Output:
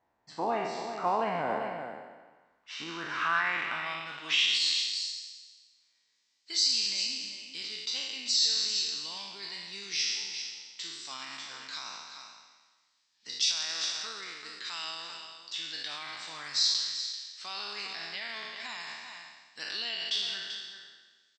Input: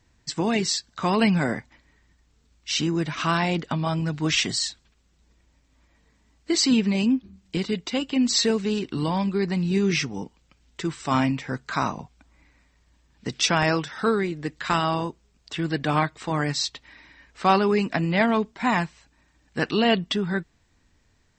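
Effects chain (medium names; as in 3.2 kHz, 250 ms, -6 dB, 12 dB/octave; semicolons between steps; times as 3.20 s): spectral sustain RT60 1.35 s; 16.06–16.71 s: bass shelf 150 Hz +9 dB; on a send: delay 388 ms -10.5 dB; on the sum: peak limiter -12 dBFS, peak gain reduction 8.5 dB; band-pass sweep 770 Hz -> 4.7 kHz, 2.19–5.07 s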